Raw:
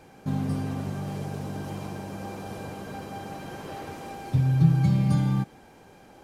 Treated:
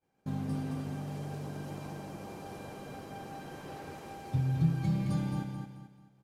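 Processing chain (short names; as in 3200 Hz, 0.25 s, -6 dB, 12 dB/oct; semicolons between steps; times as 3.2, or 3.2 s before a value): expander -39 dBFS; feedback echo 0.218 s, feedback 35%, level -6 dB; gain -7.5 dB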